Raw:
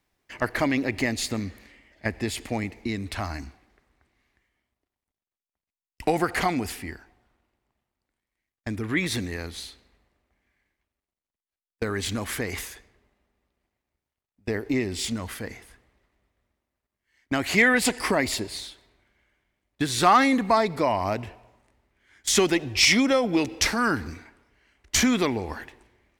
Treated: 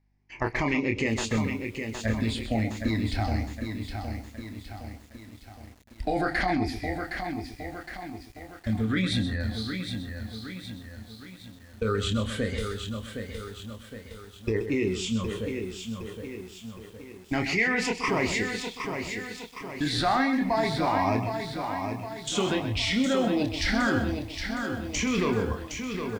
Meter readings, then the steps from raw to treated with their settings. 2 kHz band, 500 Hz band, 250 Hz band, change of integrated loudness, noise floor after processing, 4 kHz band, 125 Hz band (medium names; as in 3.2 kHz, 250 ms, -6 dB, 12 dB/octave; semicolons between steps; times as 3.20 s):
-3.0 dB, -2.0 dB, -0.5 dB, -4.0 dB, -50 dBFS, -3.5 dB, +4.0 dB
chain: drifting ripple filter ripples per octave 0.75, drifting +0.29 Hz, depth 9 dB; bass shelf 63 Hz +11.5 dB; doubling 27 ms -7 dB; hum 50 Hz, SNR 34 dB; spectral noise reduction 9 dB; in parallel at +1 dB: compressor with a negative ratio -24 dBFS, ratio -0.5; on the sum: distance through air 100 m; echo from a far wall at 22 m, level -10 dB; bit-crushed delay 764 ms, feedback 55%, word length 7-bit, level -6.5 dB; trim -8.5 dB